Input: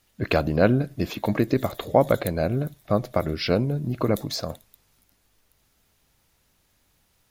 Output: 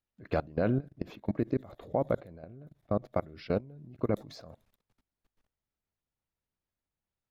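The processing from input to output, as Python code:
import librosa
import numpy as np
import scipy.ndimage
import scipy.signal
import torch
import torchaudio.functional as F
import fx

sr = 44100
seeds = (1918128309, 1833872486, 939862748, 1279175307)

y = fx.lowpass(x, sr, hz=fx.steps((0.0, 1900.0), (0.84, 1100.0), (3.05, 1800.0)), slope=6)
y = fx.level_steps(y, sr, step_db=22)
y = y * 10.0 ** (-4.5 / 20.0)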